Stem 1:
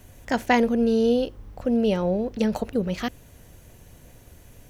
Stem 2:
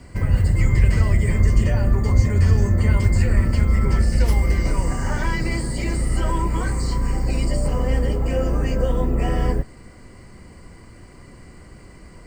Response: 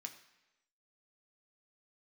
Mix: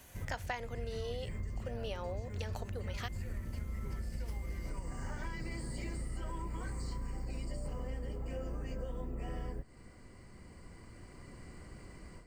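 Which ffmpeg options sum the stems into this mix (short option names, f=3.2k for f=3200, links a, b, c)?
-filter_complex "[0:a]highpass=730,volume=-1.5dB[a];[1:a]dynaudnorm=f=640:g=3:m=11.5dB,volume=-18.5dB[b];[a][b]amix=inputs=2:normalize=0,acompressor=threshold=-36dB:ratio=6"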